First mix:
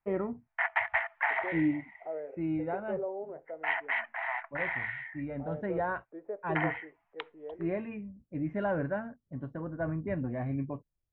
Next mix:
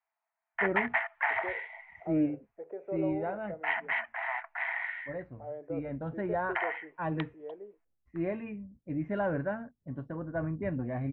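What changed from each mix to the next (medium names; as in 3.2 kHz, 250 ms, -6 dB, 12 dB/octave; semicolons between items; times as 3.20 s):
first voice: entry +0.55 s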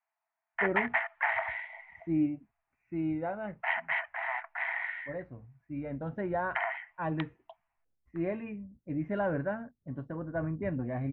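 second voice: muted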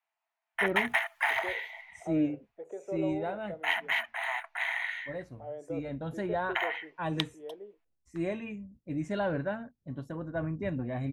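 second voice: unmuted; master: remove low-pass 2.2 kHz 24 dB/octave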